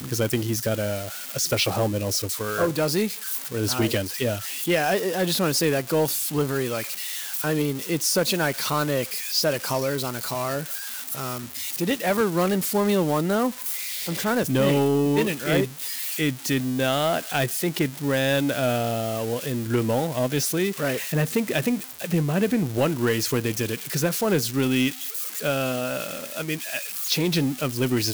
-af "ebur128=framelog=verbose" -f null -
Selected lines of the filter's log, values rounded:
Integrated loudness:
  I:         -24.2 LUFS
  Threshold: -34.2 LUFS
Loudness range:
  LRA:         2.2 LU
  Threshold: -44.1 LUFS
  LRA low:   -25.2 LUFS
  LRA high:  -23.0 LUFS